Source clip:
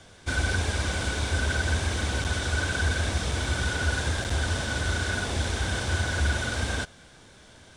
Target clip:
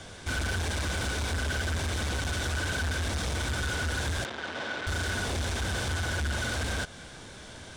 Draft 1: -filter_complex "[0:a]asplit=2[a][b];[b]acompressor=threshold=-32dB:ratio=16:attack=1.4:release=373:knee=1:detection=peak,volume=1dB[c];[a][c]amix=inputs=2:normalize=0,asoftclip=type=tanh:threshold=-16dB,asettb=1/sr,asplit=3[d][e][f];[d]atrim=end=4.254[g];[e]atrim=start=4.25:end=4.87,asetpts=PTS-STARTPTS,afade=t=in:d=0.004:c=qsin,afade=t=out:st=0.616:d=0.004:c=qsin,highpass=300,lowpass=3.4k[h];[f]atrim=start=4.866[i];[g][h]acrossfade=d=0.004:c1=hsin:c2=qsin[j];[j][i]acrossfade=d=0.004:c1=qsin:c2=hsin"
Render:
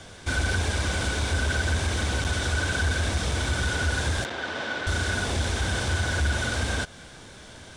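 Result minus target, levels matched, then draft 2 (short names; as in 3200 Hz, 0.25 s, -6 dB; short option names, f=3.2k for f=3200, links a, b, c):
soft clip: distortion -12 dB
-filter_complex "[0:a]asplit=2[a][b];[b]acompressor=threshold=-32dB:ratio=16:attack=1.4:release=373:knee=1:detection=peak,volume=1dB[c];[a][c]amix=inputs=2:normalize=0,asoftclip=type=tanh:threshold=-27dB,asettb=1/sr,asplit=3[d][e][f];[d]atrim=end=4.254[g];[e]atrim=start=4.25:end=4.87,asetpts=PTS-STARTPTS,afade=t=in:d=0.004:c=qsin,afade=t=out:st=0.616:d=0.004:c=qsin,highpass=300,lowpass=3.4k[h];[f]atrim=start=4.866[i];[g][h]acrossfade=d=0.004:c1=hsin:c2=qsin[j];[j][i]acrossfade=d=0.004:c1=qsin:c2=hsin"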